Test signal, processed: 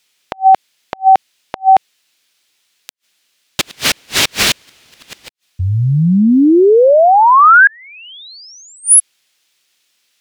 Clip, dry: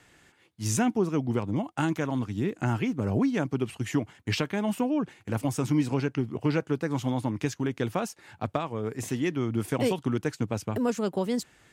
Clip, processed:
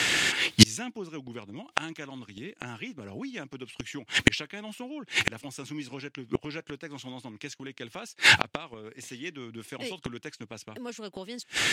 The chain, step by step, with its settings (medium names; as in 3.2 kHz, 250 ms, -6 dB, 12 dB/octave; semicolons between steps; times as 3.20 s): frequency weighting D; inverted gate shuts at -26 dBFS, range -39 dB; loudness maximiser +28.5 dB; trim -1 dB